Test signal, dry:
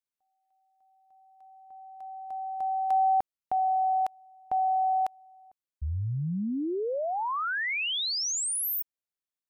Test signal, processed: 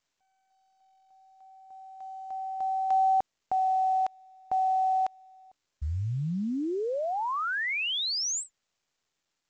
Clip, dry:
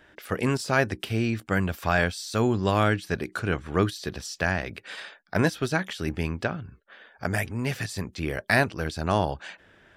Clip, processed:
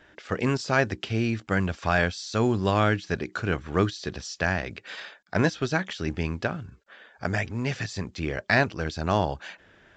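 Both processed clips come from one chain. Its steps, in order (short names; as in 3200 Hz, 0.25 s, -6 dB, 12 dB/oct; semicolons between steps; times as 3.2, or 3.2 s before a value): µ-law 128 kbps 16000 Hz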